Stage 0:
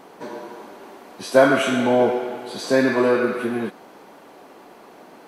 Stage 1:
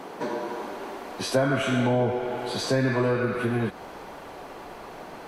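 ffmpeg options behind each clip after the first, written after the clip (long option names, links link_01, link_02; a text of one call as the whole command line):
ffmpeg -i in.wav -filter_complex "[0:a]asubboost=boost=9.5:cutoff=82,acrossover=split=180[link_01][link_02];[link_02]acompressor=threshold=-33dB:ratio=3[link_03];[link_01][link_03]amix=inputs=2:normalize=0,highshelf=frequency=7300:gain=-5.5,volume=6dB" out.wav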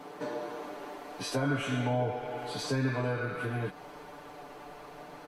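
ffmpeg -i in.wav -af "aecho=1:1:6.8:0.82,volume=-8.5dB" out.wav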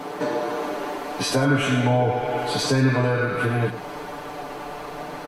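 ffmpeg -i in.wav -filter_complex "[0:a]asplit=2[link_01][link_02];[link_02]alimiter=level_in=4.5dB:limit=-24dB:level=0:latency=1:release=265,volume=-4.5dB,volume=1dB[link_03];[link_01][link_03]amix=inputs=2:normalize=0,asplit=2[link_04][link_05];[link_05]adelay=99.13,volume=-12dB,highshelf=frequency=4000:gain=-2.23[link_06];[link_04][link_06]amix=inputs=2:normalize=0,volume=6.5dB" out.wav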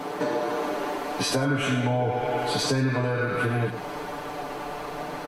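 ffmpeg -i in.wav -af "acompressor=threshold=-22dB:ratio=3" out.wav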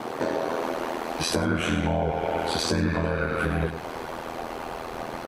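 ffmpeg -i in.wav -af "aeval=exprs='val(0)*sin(2*PI*41*n/s)':channel_layout=same,volume=2.5dB" out.wav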